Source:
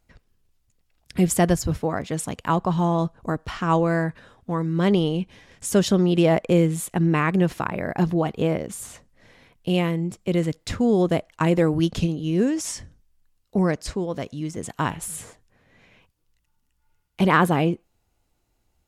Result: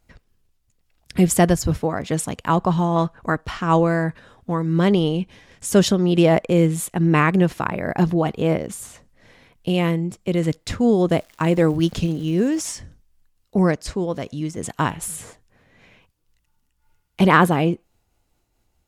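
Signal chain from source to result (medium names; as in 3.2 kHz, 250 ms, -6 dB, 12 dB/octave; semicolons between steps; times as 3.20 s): 2.96–3.41 s: peaking EQ 1.8 kHz +10 dB 1.6 oct; 11.16–12.75 s: crackle 420 per s -40 dBFS; random flutter of the level, depth 55%; trim +5.5 dB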